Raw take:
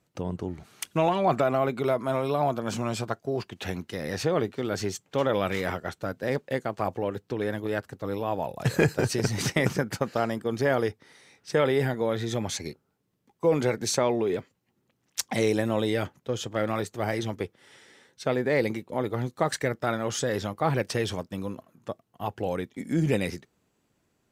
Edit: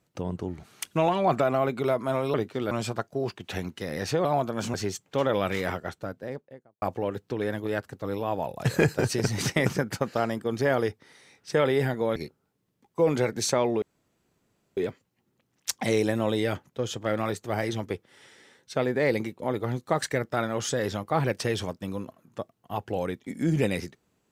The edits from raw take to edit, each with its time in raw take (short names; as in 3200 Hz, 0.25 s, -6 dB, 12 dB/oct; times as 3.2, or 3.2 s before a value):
2.34–2.83 swap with 4.37–4.74
5.68–6.82 studio fade out
12.16–12.61 cut
14.27 insert room tone 0.95 s